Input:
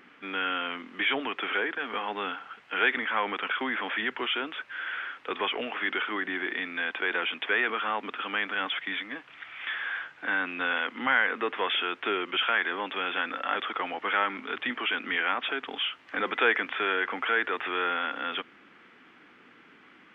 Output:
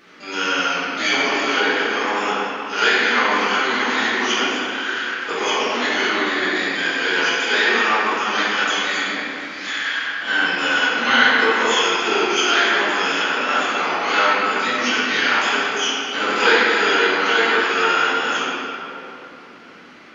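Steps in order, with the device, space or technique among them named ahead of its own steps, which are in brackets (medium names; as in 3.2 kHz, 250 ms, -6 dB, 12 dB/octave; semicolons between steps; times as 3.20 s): shimmer-style reverb (harmony voices +12 st -7 dB; reverberation RT60 3.1 s, pre-delay 4 ms, DRR -9 dB); trim +1 dB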